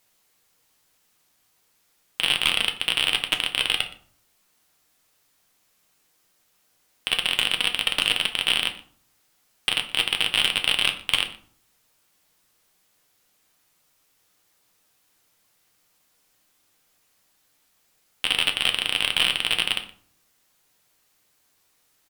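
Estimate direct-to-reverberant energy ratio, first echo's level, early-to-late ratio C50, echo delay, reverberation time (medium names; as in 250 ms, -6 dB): 4.5 dB, -20.5 dB, 12.0 dB, 120 ms, 0.50 s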